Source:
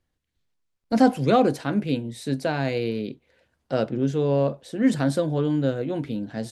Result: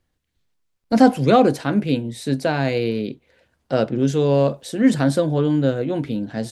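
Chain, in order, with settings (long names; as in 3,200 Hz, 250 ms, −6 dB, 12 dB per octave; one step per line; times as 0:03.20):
0:03.98–0:04.82: high-shelf EQ 3,700 Hz +9 dB
level +4.5 dB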